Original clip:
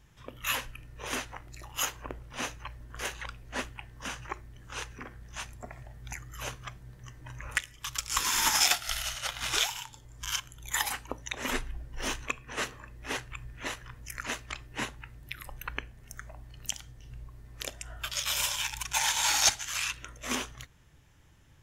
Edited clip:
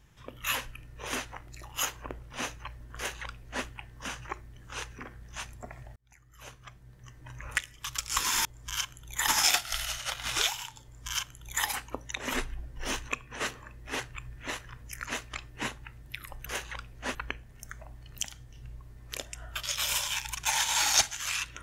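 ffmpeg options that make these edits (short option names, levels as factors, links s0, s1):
-filter_complex "[0:a]asplit=6[s0][s1][s2][s3][s4][s5];[s0]atrim=end=5.96,asetpts=PTS-STARTPTS,afade=t=out:st=5.956:d=0.004:c=hsin[s6];[s1]atrim=start=5.96:end=8.452,asetpts=PTS-STARTPTS,afade=t=in:d=1.58[s7];[s2]atrim=start=9.998:end=10.832[s8];[s3]atrim=start=8.448:end=15.632[s9];[s4]atrim=start=2.958:end=3.652[s10];[s5]atrim=start=15.628[s11];[s6][s7]concat=n=2:v=0:a=1[s12];[s12][s8]acrossfade=d=0.004:c1=hsin:c2=hsin[s13];[s13][s9]acrossfade=d=0.004:c1=hsin:c2=hsin[s14];[s14][s10]acrossfade=d=0.004:c1=hsin:c2=hsin[s15];[s15][s11]acrossfade=d=0.004:c1=hsin:c2=hsin"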